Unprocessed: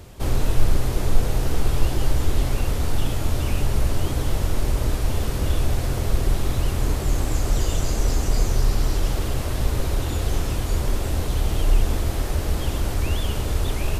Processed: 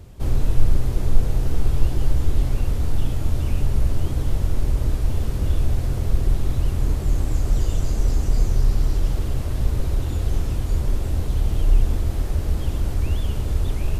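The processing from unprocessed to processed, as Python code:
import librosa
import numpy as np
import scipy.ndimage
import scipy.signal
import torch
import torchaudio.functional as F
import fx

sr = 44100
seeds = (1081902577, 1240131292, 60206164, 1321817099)

y = fx.low_shelf(x, sr, hz=310.0, db=9.5)
y = y * librosa.db_to_amplitude(-7.5)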